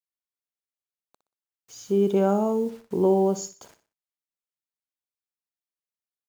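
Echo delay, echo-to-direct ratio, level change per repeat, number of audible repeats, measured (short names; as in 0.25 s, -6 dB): 61 ms, -12.5 dB, -9.0 dB, 3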